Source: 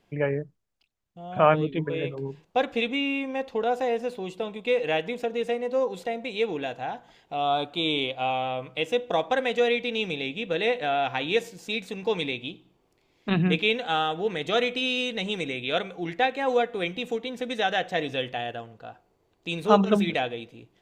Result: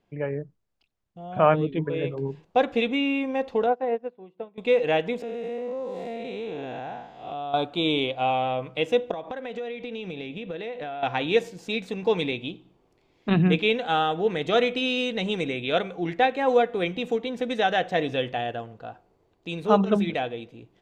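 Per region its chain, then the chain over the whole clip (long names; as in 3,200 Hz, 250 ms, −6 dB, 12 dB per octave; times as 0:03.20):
0:03.66–0:04.58: band-pass filter 110–2,100 Hz + expander for the loud parts 2.5 to 1, over −38 dBFS
0:05.22–0:07.54: spectrum smeared in time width 238 ms + downward compressor 4 to 1, threshold −33 dBFS
0:09.11–0:11.03: high-shelf EQ 5,600 Hz −8 dB + downward compressor 10 to 1, threshold −33 dBFS
whole clip: low-pass filter 3,600 Hz 6 dB per octave; parametric band 2,200 Hz −2.5 dB 2 octaves; automatic gain control gain up to 8 dB; level −4 dB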